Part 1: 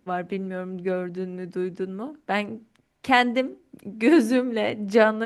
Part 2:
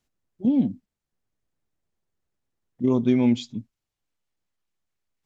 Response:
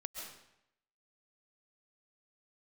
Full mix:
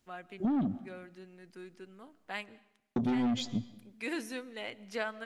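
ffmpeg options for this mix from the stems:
-filter_complex "[0:a]tiltshelf=f=970:g=-7,volume=0.158,asplit=2[s0][s1];[s1]volume=0.15[s2];[1:a]asoftclip=type=tanh:threshold=0.0708,volume=1.26,asplit=3[s3][s4][s5];[s3]atrim=end=2.43,asetpts=PTS-STARTPTS,afade=t=out:st=2.426:d=0.004:c=hsin[s6];[s4]atrim=start=2.43:end=2.96,asetpts=PTS-STARTPTS,volume=0[s7];[s5]atrim=start=2.96,asetpts=PTS-STARTPTS,afade=t=in:d=0.004:c=hsin[s8];[s6][s7][s8]concat=n=3:v=0:a=1,asplit=3[s9][s10][s11];[s10]volume=0.178[s12];[s11]apad=whole_len=231803[s13];[s0][s13]sidechaincompress=threshold=0.0224:ratio=8:attack=16:release=427[s14];[2:a]atrim=start_sample=2205[s15];[s2][s12]amix=inputs=2:normalize=0[s16];[s16][s15]afir=irnorm=-1:irlink=0[s17];[s14][s9][s17]amix=inputs=3:normalize=0,acompressor=threshold=0.0398:ratio=6"

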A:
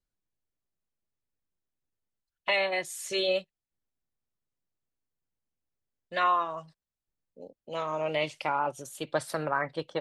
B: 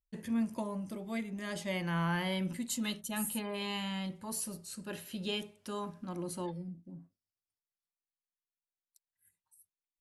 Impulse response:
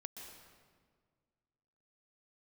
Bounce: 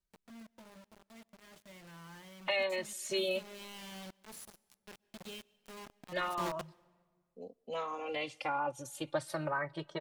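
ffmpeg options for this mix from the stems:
-filter_complex "[0:a]acompressor=threshold=0.0126:ratio=1.5,asplit=2[s0][s1];[s1]adelay=2.7,afreqshift=0.3[s2];[s0][s2]amix=inputs=2:normalize=1,volume=1.19,asplit=2[s3][s4];[s4]volume=0.0668[s5];[1:a]highpass=75,acrossover=split=150|3000[s6][s7][s8];[s6]acompressor=threshold=0.00562:ratio=6[s9];[s9][s7][s8]amix=inputs=3:normalize=0,acrusher=bits=5:mix=0:aa=0.000001,volume=0.944,afade=t=in:st=3.25:d=0.33:silence=0.398107,afade=t=in:st=6.27:d=0.27:silence=0.251189,asplit=2[s10][s11];[s11]volume=0.15[s12];[2:a]atrim=start_sample=2205[s13];[s5][s12]amix=inputs=2:normalize=0[s14];[s14][s13]afir=irnorm=-1:irlink=0[s15];[s3][s10][s15]amix=inputs=3:normalize=0,highshelf=f=11000:g=-4"

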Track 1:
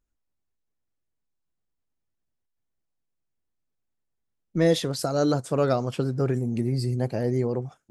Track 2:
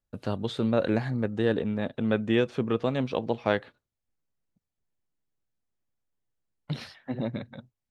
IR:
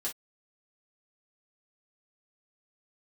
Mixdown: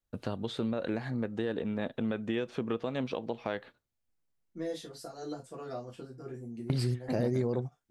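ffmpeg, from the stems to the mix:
-filter_complex "[0:a]volume=1.26,asplit=2[s0][s1];[s1]volume=0.0891[s2];[1:a]adynamicequalizer=threshold=0.00708:dfrequency=100:dqfactor=0.9:tfrequency=100:tqfactor=0.9:attack=5:release=100:ratio=0.375:range=2.5:mode=cutabove:tftype=bell,alimiter=limit=0.119:level=0:latency=1:release=206,volume=0.891,asplit=3[s3][s4][s5];[s4]volume=0.075[s6];[s5]apad=whole_len=348635[s7];[s0][s7]sidechaingate=range=0.0224:threshold=0.00355:ratio=16:detection=peak[s8];[2:a]atrim=start_sample=2205[s9];[s2][s6]amix=inputs=2:normalize=0[s10];[s10][s9]afir=irnorm=-1:irlink=0[s11];[s8][s3][s11]amix=inputs=3:normalize=0,acompressor=threshold=0.0355:ratio=2.5"

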